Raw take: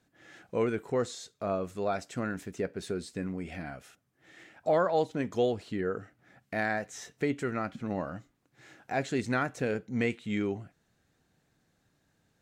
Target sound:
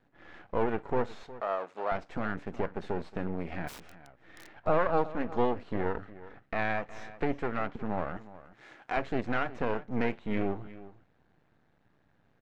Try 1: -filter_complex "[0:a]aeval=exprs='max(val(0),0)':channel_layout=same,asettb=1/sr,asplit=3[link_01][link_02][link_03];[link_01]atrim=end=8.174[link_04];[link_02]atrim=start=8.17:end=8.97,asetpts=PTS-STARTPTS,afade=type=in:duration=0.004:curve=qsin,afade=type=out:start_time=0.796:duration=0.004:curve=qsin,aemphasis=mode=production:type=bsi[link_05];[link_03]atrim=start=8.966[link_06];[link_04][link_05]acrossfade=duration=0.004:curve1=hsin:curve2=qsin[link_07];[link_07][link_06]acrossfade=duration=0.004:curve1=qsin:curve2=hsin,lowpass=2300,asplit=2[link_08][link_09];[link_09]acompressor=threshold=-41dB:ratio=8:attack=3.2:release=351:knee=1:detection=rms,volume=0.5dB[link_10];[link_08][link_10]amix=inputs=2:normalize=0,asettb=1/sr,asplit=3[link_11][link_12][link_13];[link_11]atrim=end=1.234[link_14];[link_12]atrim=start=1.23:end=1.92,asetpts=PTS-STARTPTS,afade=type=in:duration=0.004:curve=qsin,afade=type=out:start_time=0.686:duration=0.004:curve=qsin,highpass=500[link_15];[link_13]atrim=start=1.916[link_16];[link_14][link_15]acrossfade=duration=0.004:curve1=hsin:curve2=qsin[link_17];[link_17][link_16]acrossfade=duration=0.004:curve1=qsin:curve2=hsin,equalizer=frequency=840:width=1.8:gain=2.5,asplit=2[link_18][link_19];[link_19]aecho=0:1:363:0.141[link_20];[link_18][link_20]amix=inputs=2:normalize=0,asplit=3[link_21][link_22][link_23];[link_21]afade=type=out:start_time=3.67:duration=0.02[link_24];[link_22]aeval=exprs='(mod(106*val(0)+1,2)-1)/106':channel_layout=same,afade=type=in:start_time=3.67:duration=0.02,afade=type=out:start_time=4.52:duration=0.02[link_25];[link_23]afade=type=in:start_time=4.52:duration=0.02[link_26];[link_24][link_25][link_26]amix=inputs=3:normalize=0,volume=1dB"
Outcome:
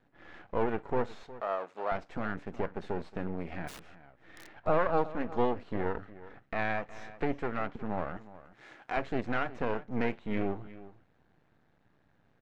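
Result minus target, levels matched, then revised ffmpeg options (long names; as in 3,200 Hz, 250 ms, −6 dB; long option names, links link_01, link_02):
downward compressor: peak gain reduction +5.5 dB
-filter_complex "[0:a]aeval=exprs='max(val(0),0)':channel_layout=same,asettb=1/sr,asplit=3[link_01][link_02][link_03];[link_01]atrim=end=8.174[link_04];[link_02]atrim=start=8.17:end=8.97,asetpts=PTS-STARTPTS,afade=type=in:duration=0.004:curve=qsin,afade=type=out:start_time=0.796:duration=0.004:curve=qsin,aemphasis=mode=production:type=bsi[link_05];[link_03]atrim=start=8.966[link_06];[link_04][link_05]acrossfade=duration=0.004:curve1=hsin:curve2=qsin[link_07];[link_07][link_06]acrossfade=duration=0.004:curve1=qsin:curve2=hsin,lowpass=2300,asplit=2[link_08][link_09];[link_09]acompressor=threshold=-34.5dB:ratio=8:attack=3.2:release=351:knee=1:detection=rms,volume=0.5dB[link_10];[link_08][link_10]amix=inputs=2:normalize=0,asettb=1/sr,asplit=3[link_11][link_12][link_13];[link_11]atrim=end=1.234[link_14];[link_12]atrim=start=1.23:end=1.92,asetpts=PTS-STARTPTS,afade=type=in:duration=0.004:curve=qsin,afade=type=out:start_time=0.686:duration=0.004:curve=qsin,highpass=500[link_15];[link_13]atrim=start=1.916[link_16];[link_14][link_15]acrossfade=duration=0.004:curve1=hsin:curve2=qsin[link_17];[link_17][link_16]acrossfade=duration=0.004:curve1=qsin:curve2=hsin,equalizer=frequency=840:width=1.8:gain=2.5,asplit=2[link_18][link_19];[link_19]aecho=0:1:363:0.141[link_20];[link_18][link_20]amix=inputs=2:normalize=0,asplit=3[link_21][link_22][link_23];[link_21]afade=type=out:start_time=3.67:duration=0.02[link_24];[link_22]aeval=exprs='(mod(106*val(0)+1,2)-1)/106':channel_layout=same,afade=type=in:start_time=3.67:duration=0.02,afade=type=out:start_time=4.52:duration=0.02[link_25];[link_23]afade=type=in:start_time=4.52:duration=0.02[link_26];[link_24][link_25][link_26]amix=inputs=3:normalize=0,volume=1dB"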